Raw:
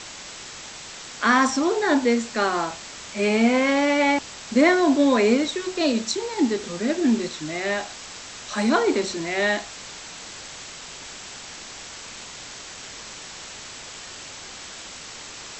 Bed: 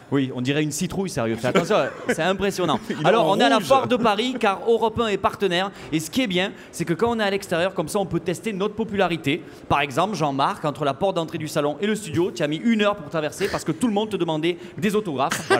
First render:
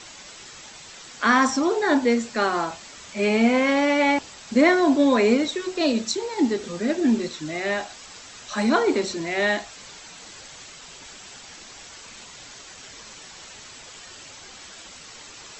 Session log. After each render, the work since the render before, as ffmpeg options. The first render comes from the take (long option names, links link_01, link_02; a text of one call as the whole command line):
ffmpeg -i in.wav -af "afftdn=noise_reduction=7:noise_floor=-39" out.wav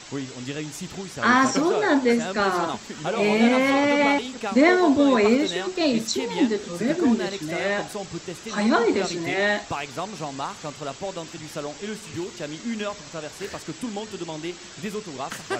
ffmpeg -i in.wav -i bed.wav -filter_complex "[1:a]volume=-10dB[link_01];[0:a][link_01]amix=inputs=2:normalize=0" out.wav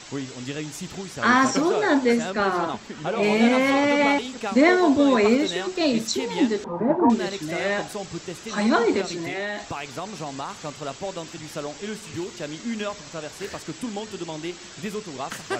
ffmpeg -i in.wav -filter_complex "[0:a]asettb=1/sr,asplit=3[link_01][link_02][link_03];[link_01]atrim=end=2.304[link_04];[link_02]atrim=start=2.3:end=3.23,asetpts=PTS-STARTPTS,afade=type=in:duration=0.004:curve=qsin,afade=type=out:start_time=0.926:duration=0.004:curve=qsin,lowpass=frequency=3400:poles=1[link_05];[link_03]atrim=start=3.226[link_06];[link_04][link_05]acrossfade=duration=0.004:curve1=hsin:curve2=qsin[link_07];[link_07][link_06]acrossfade=duration=0.004:curve1=qsin:curve2=hsin,asettb=1/sr,asplit=3[link_08][link_09][link_10];[link_08]atrim=end=6.644[link_11];[link_09]atrim=start=6.64:end=7.1,asetpts=PTS-STARTPTS,afade=type=in:duration=0.004:curve=qsin,afade=type=out:start_time=0.456:duration=0.004:curve=qsin,lowpass=frequency=920:width_type=q:width=8.4[link_12];[link_10]atrim=start=7.096[link_13];[link_11][link_12]acrossfade=duration=0.004:curve1=hsin:curve2=qsin[link_14];[link_14][link_13]acrossfade=duration=0.004:curve1=qsin:curve2=hsin,asettb=1/sr,asplit=3[link_15][link_16][link_17];[link_15]atrim=end=9.014[link_18];[link_16]atrim=start=9.01:end=10.62,asetpts=PTS-STARTPTS,afade=type=in:duration=0.004:curve=qsin,afade=type=out:start_time=1.606:duration=0.004:curve=qsin,acompressor=threshold=-26dB:ratio=4:attack=3.2:release=140:knee=1:detection=peak[link_19];[link_17]atrim=start=10.616[link_20];[link_18][link_19]acrossfade=duration=0.004:curve1=hsin:curve2=qsin[link_21];[link_21][link_20]acrossfade=duration=0.004:curve1=qsin:curve2=hsin" out.wav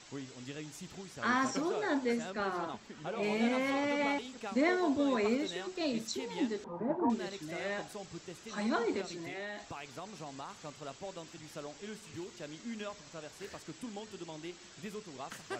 ffmpeg -i in.wav -af "volume=-12.5dB" out.wav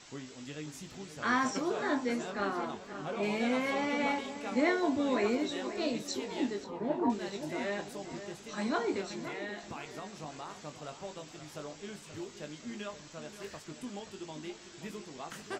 ffmpeg -i in.wav -filter_complex "[0:a]asplit=2[link_01][link_02];[link_02]adelay=20,volume=-7dB[link_03];[link_01][link_03]amix=inputs=2:normalize=0,asplit=2[link_04][link_05];[link_05]adelay=528,lowpass=frequency=2800:poles=1,volume=-11dB,asplit=2[link_06][link_07];[link_07]adelay=528,lowpass=frequency=2800:poles=1,volume=0.46,asplit=2[link_08][link_09];[link_09]adelay=528,lowpass=frequency=2800:poles=1,volume=0.46,asplit=2[link_10][link_11];[link_11]adelay=528,lowpass=frequency=2800:poles=1,volume=0.46,asplit=2[link_12][link_13];[link_13]adelay=528,lowpass=frequency=2800:poles=1,volume=0.46[link_14];[link_06][link_08][link_10][link_12][link_14]amix=inputs=5:normalize=0[link_15];[link_04][link_15]amix=inputs=2:normalize=0" out.wav